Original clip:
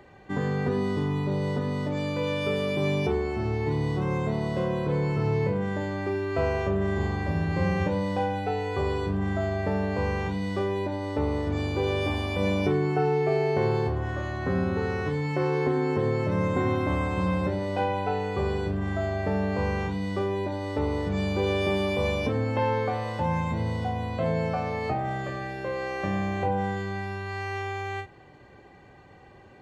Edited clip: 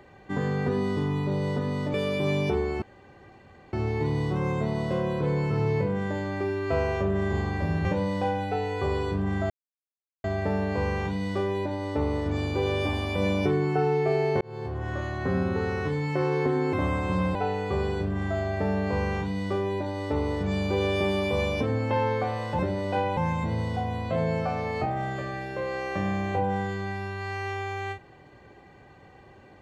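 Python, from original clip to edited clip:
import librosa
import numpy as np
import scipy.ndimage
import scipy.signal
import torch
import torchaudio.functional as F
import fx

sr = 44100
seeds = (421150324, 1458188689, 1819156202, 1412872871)

y = fx.edit(x, sr, fx.cut(start_s=1.94, length_s=0.57),
    fx.insert_room_tone(at_s=3.39, length_s=0.91),
    fx.cut(start_s=7.51, length_s=0.29),
    fx.insert_silence(at_s=9.45, length_s=0.74),
    fx.fade_in_span(start_s=13.62, length_s=0.54),
    fx.cut(start_s=15.94, length_s=0.87),
    fx.move(start_s=17.43, length_s=0.58, to_s=23.25), tone=tone)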